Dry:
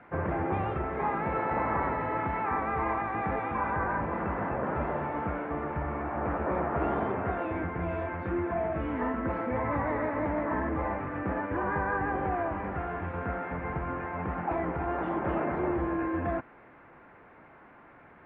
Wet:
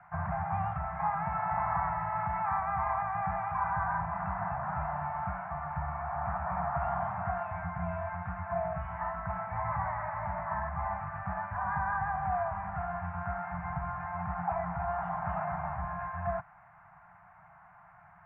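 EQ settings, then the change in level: Chebyshev band-stop 180–690 Hz, order 4; low-pass 1.3 kHz 12 dB/octave; bass shelf 150 Hz -5 dB; +2.0 dB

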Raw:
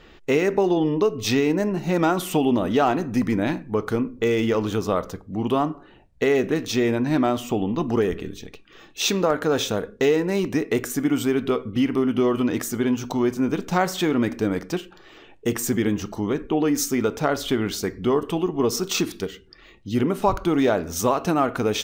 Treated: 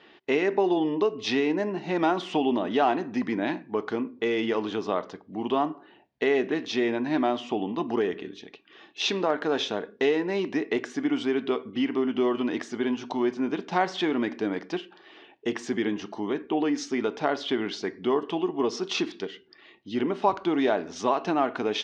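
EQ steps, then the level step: cabinet simulation 320–4500 Hz, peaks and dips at 510 Hz -8 dB, 1.3 kHz -7 dB, 2.4 kHz -3 dB, 4.1 kHz -3 dB; 0.0 dB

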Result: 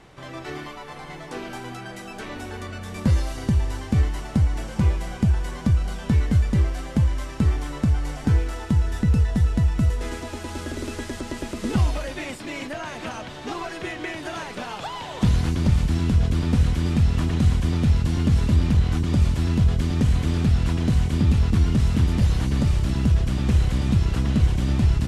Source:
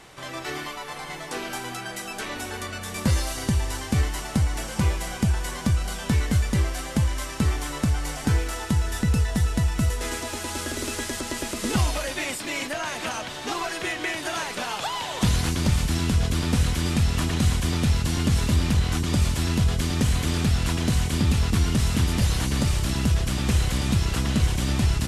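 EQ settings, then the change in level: low-pass 4 kHz 6 dB/octave; bass shelf 450 Hz +7.5 dB; -4.0 dB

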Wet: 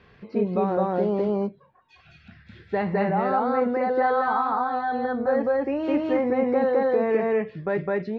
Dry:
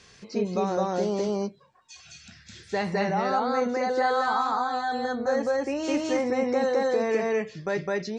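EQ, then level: distance through air 430 m; treble shelf 5.4 kHz -8.5 dB; +4.0 dB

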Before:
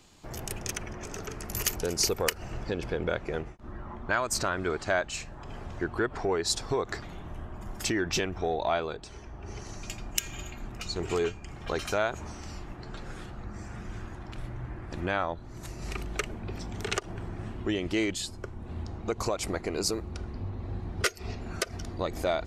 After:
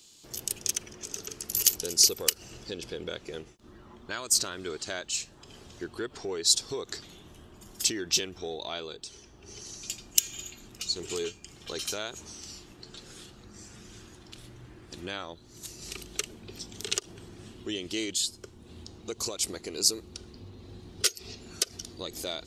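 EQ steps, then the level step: tilt EQ +3.5 dB/octave; high-order bell 1.2 kHz -11 dB 2.3 oct; treble shelf 9.4 kHz -7.5 dB; 0.0 dB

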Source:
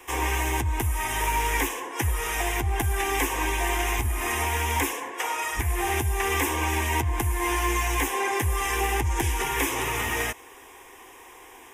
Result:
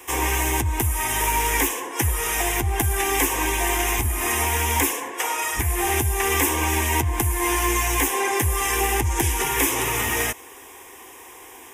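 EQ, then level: high-pass 77 Hz 6 dB/octave; bass shelf 440 Hz +4.5 dB; treble shelf 5.2 kHz +8.5 dB; +1.5 dB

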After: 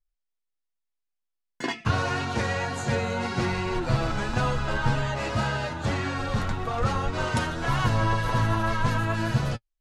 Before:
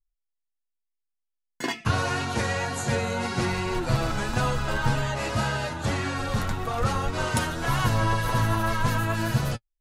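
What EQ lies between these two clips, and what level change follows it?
distance through air 62 m; 0.0 dB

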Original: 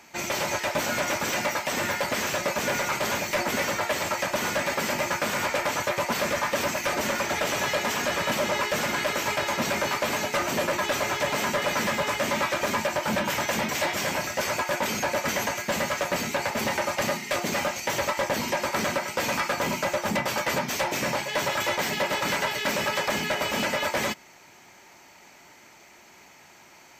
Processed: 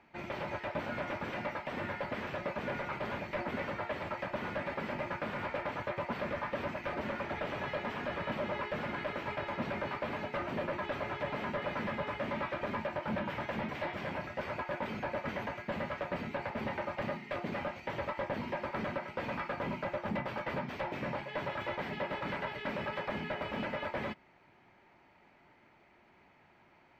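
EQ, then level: distance through air 420 m; bass shelf 170 Hz +5.5 dB; treble shelf 9.9 kHz +4 dB; -8.5 dB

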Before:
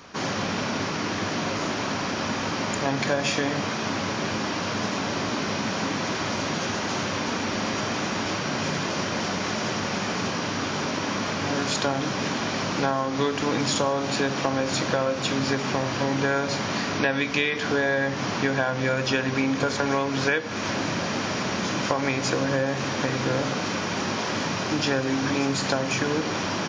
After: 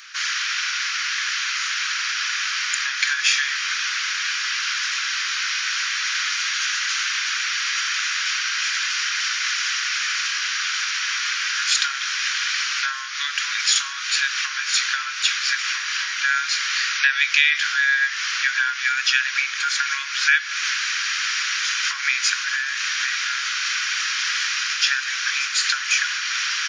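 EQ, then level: steep high-pass 1.4 kHz 48 dB/octave; +9.0 dB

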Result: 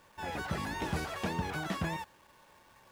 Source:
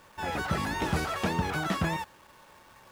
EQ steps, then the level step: band-stop 1.3 kHz, Q 13; -5.5 dB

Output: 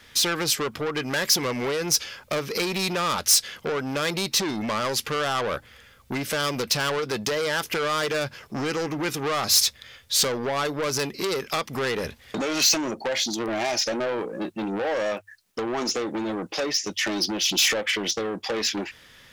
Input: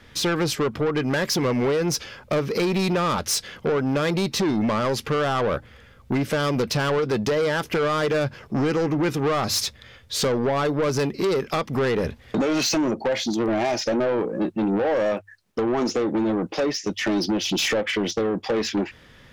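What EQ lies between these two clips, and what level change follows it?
tilt EQ +3 dB/octave; bass shelf 75 Hz +10.5 dB; -2.0 dB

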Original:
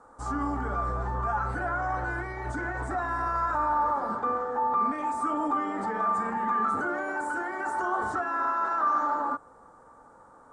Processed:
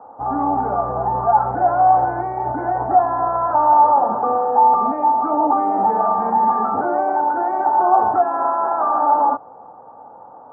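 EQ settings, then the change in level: high-pass 88 Hz 24 dB/octave; resonant low-pass 780 Hz, resonance Q 4.9; +6.5 dB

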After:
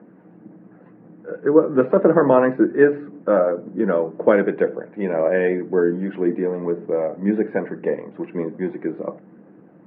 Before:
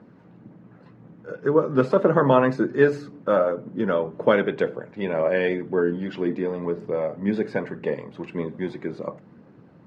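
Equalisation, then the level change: distance through air 71 m; cabinet simulation 170–2500 Hz, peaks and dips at 190 Hz +7 dB, 320 Hz +9 dB, 480 Hz +5 dB, 710 Hz +6 dB, 1.7 kHz +4 dB; -1.0 dB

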